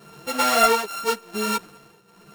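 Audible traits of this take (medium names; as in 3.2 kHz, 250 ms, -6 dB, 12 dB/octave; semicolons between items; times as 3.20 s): a buzz of ramps at a fixed pitch in blocks of 32 samples; tremolo triangle 0.86 Hz, depth 85%; a shimmering, thickened sound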